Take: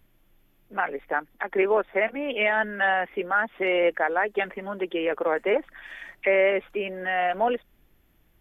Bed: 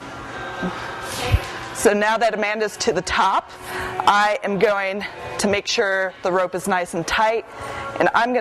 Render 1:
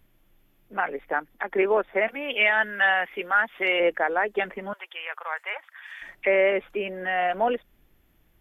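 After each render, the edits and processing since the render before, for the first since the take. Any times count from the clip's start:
0:02.08–0:03.80: tilt shelving filter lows −6.5 dB
0:04.73–0:06.02: high-pass filter 920 Hz 24 dB per octave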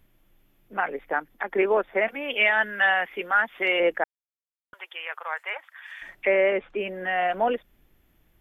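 0:04.04–0:04.73: silence
0:06.33–0:06.79: high-frequency loss of the air 120 metres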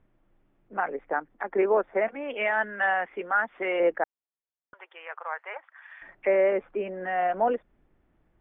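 low-pass filter 1,400 Hz 12 dB per octave
low-shelf EQ 150 Hz −5 dB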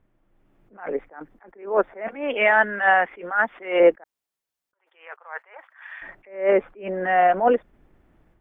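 automatic gain control gain up to 9 dB
level that may rise only so fast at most 150 dB per second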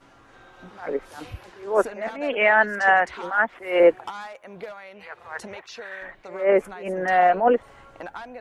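mix in bed −20 dB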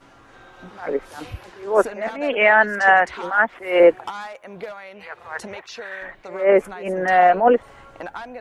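level +3.5 dB
brickwall limiter −3 dBFS, peak gain reduction 1 dB

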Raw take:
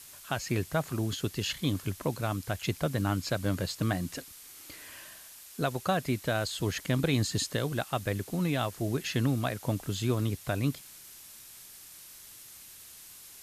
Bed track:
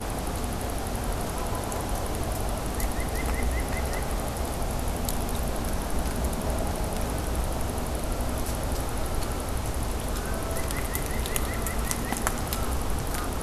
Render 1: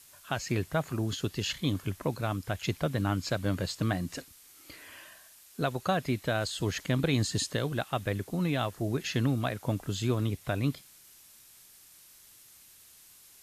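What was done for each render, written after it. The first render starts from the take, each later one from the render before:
noise reduction from a noise print 6 dB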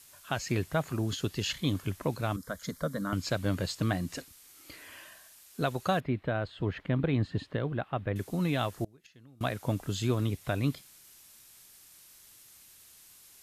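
0:02.36–0:03.13: phaser with its sweep stopped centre 530 Hz, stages 8
0:06.00–0:08.16: high-frequency loss of the air 480 metres
0:08.84–0:09.41: gate with flip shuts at −24 dBFS, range −28 dB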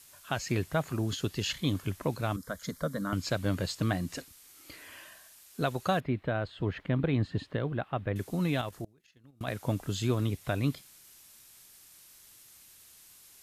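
0:08.61–0:09.48: output level in coarse steps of 9 dB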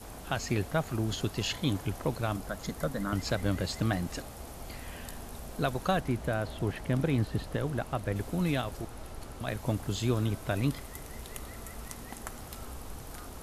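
mix in bed track −14.5 dB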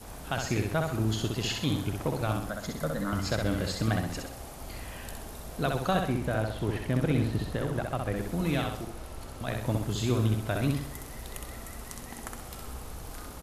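repeating echo 64 ms, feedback 44%, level −4 dB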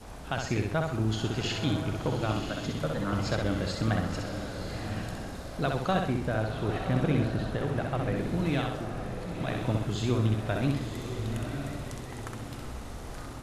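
high-frequency loss of the air 54 metres
on a send: feedback delay with all-pass diffusion 1,023 ms, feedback 40%, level −7 dB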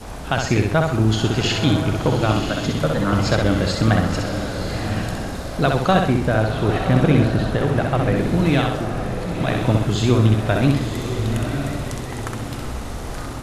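level +11 dB

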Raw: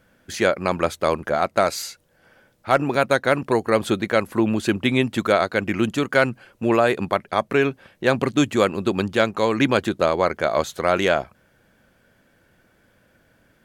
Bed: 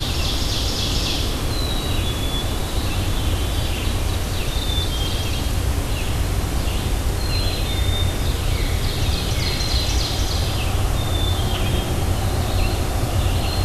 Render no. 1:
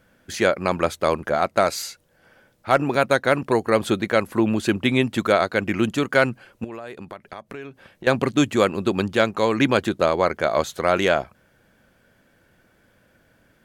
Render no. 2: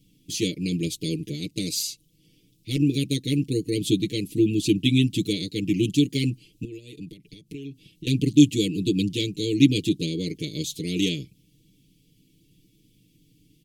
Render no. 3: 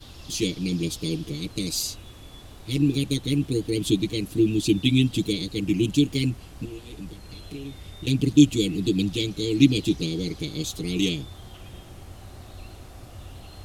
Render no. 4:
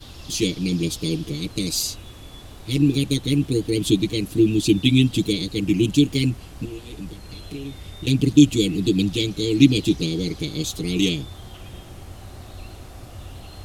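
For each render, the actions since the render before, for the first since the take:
0:06.64–0:08.07: downward compressor 5 to 1, threshold −34 dBFS
inverse Chebyshev band-stop filter 640–1,600 Hz, stop band 50 dB; comb filter 6.6 ms, depth 93%
mix in bed −22 dB
level +3.5 dB; brickwall limiter −1 dBFS, peak gain reduction 2 dB

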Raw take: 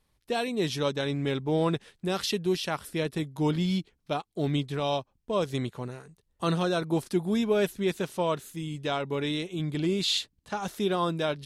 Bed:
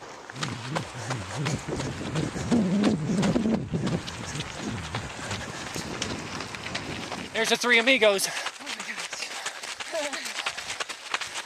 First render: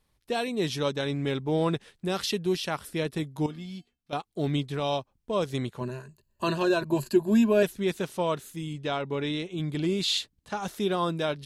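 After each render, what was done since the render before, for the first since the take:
0:03.46–0:04.13: tuned comb filter 240 Hz, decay 0.21 s, harmonics odd, mix 80%
0:05.80–0:07.63: EQ curve with evenly spaced ripples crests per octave 1.4, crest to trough 14 dB
0:08.73–0:09.58: high-frequency loss of the air 52 metres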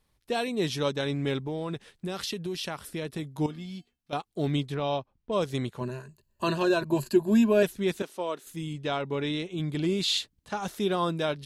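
0:01.46–0:03.40: downward compressor, threshold −29 dBFS
0:04.74–0:05.32: high-frequency loss of the air 160 metres
0:08.02–0:08.47: four-pole ladder high-pass 210 Hz, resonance 20%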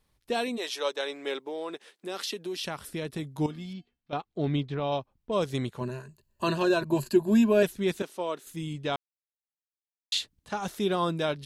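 0:00.56–0:02.61: high-pass filter 500 Hz → 230 Hz 24 dB per octave
0:03.73–0:04.92: high-frequency loss of the air 160 metres
0:08.96–0:10.12: silence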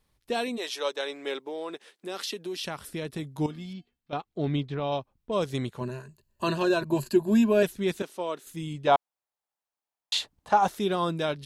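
0:08.87–0:10.69: parametric band 810 Hz +14 dB 1.5 octaves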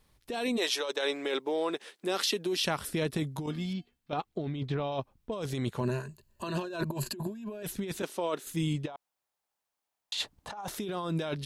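compressor whose output falls as the input rises −33 dBFS, ratio −1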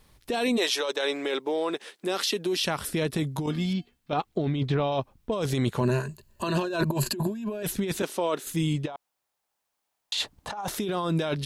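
in parallel at 0 dB: brickwall limiter −26 dBFS, peak gain reduction 8.5 dB
on the sum: speech leveller 2 s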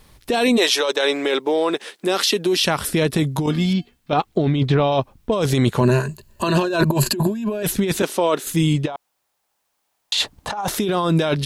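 level +8.5 dB

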